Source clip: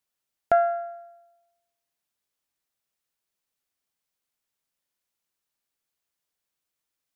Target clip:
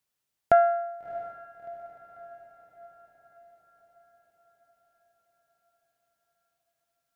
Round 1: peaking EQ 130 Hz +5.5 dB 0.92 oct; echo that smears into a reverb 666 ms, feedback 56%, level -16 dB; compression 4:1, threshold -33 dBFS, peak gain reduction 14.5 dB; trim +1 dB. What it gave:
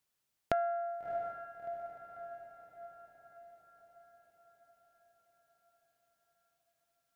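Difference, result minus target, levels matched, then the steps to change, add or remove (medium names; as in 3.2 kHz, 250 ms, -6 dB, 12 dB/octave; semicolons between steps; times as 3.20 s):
compression: peak gain reduction +14.5 dB
remove: compression 4:1, threshold -33 dBFS, peak gain reduction 14.5 dB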